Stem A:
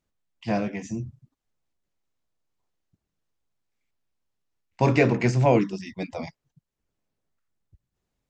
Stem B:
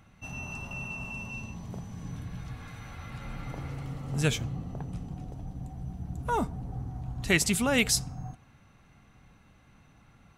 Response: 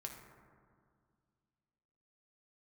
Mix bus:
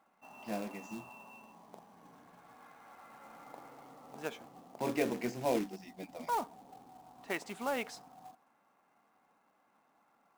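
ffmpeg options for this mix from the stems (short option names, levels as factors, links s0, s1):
-filter_complex "[0:a]adynamicequalizer=threshold=0.0282:dfrequency=650:dqfactor=1.1:tfrequency=650:tqfactor=1.1:attack=5:release=100:ratio=0.375:range=1.5:mode=boostabove:tftype=bell,volume=0.178[s0];[1:a]bandpass=f=850:t=q:w=1.6:csg=0,volume=0.708[s1];[s0][s1]amix=inputs=2:normalize=0,lowshelf=f=160:t=q:w=1.5:g=-11.5,acrusher=bits=3:mode=log:mix=0:aa=0.000001"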